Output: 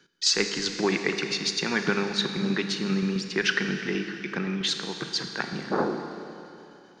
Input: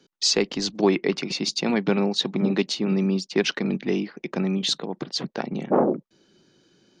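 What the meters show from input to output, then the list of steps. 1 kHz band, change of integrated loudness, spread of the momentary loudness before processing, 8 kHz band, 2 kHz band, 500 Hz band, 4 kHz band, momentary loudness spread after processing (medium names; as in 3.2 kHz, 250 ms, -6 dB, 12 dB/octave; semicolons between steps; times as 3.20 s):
-2.5 dB, -2.5 dB, 7 LU, -1.0 dB, +5.0 dB, -5.5 dB, -1.0 dB, 8 LU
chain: fifteen-band graphic EQ 250 Hz -6 dB, 630 Hz -9 dB, 1.6 kHz +11 dB; tremolo saw down 7.6 Hz, depth 50%; Schroeder reverb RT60 2.9 s, combs from 27 ms, DRR 6 dB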